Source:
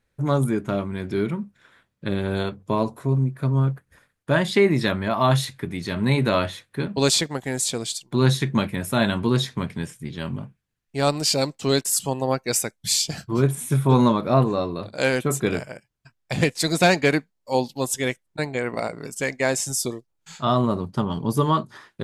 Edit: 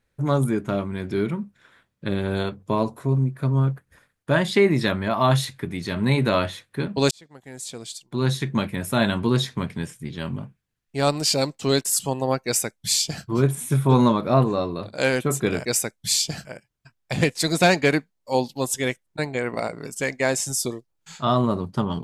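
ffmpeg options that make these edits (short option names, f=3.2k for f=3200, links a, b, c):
-filter_complex "[0:a]asplit=4[a][b][c][d];[a]atrim=end=7.11,asetpts=PTS-STARTPTS,afade=t=out:st=7.106:d=0.004:c=hsin[e];[b]atrim=start=7.11:end=15.652,asetpts=PTS-STARTPTS,afade=t=in:d=1.81[f];[c]atrim=start=12.448:end=13.252[g];[d]atrim=start=15.648[h];[e][f]concat=n=2:v=0:a=1[i];[i][g]acrossfade=d=0.004:c1=hsin:c2=hsin[j];[j][h]acrossfade=d=0.004:c1=hsin:c2=hsin"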